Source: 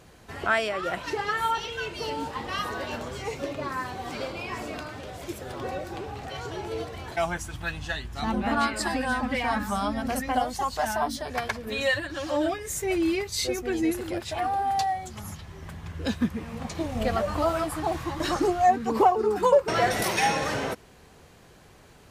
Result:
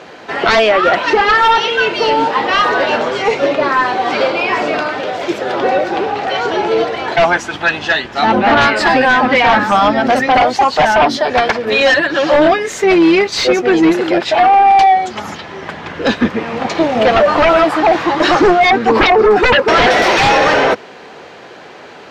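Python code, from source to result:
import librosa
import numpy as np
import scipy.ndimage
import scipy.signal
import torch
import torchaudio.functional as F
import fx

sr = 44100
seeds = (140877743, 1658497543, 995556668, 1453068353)

y = fx.octave_divider(x, sr, octaves=1, level_db=-4.0)
y = scipy.signal.sosfilt(scipy.signal.butter(2, 380.0, 'highpass', fs=sr, output='sos'), y)
y = fx.high_shelf(y, sr, hz=6100.0, db=3.0)
y = fx.notch(y, sr, hz=1100.0, q=16.0)
y = fx.fold_sine(y, sr, drive_db=14, ceiling_db=-9.0)
y = fx.air_absorb(y, sr, metres=200.0)
y = y * 10.0 ** (4.5 / 20.0)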